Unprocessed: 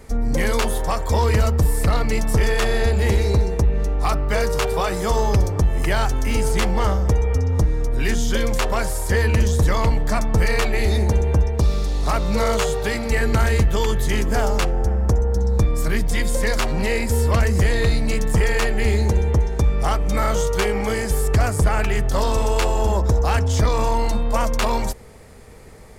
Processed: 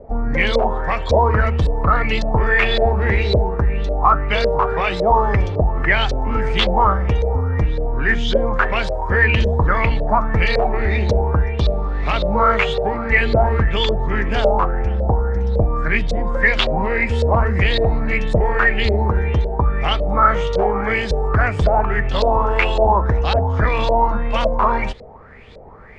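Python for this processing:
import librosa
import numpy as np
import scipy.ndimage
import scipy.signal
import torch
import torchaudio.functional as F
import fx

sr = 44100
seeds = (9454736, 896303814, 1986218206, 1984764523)

y = scipy.signal.sosfilt(scipy.signal.butter(4, 9400.0, 'lowpass', fs=sr, output='sos'), x)
y = fx.filter_lfo_lowpass(y, sr, shape='saw_up', hz=1.8, low_hz=550.0, high_hz=4100.0, q=6.4)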